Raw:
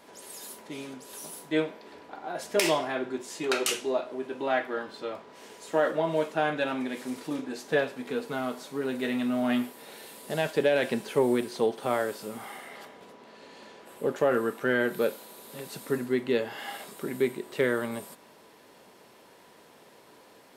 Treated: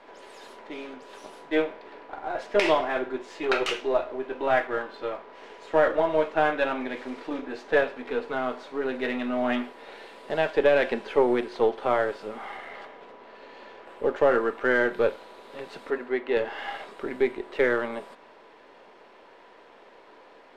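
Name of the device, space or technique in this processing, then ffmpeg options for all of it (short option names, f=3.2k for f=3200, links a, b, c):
crystal radio: -filter_complex "[0:a]highpass=350,lowpass=2.7k,aeval=exprs='if(lt(val(0),0),0.708*val(0),val(0))':c=same,asettb=1/sr,asplit=3[a][b][c];[a]atrim=end=15.904[d];[b]atrim=start=15.9:end=16.37,asetpts=PTS-STARTPTS,afade=t=in:d=0.004:c=qsin,afade=t=out:st=0.466:d=0.004:c=qsin,bass=f=250:g=-12,treble=f=4k:g=-8[e];[c]atrim=start=16.366[f];[d][e]acrossfade=d=0.004:c1=hsin:c2=qsin[g];[g][f]acrossfade=d=0.004:c1=qsin:c2=hsin,volume=6dB"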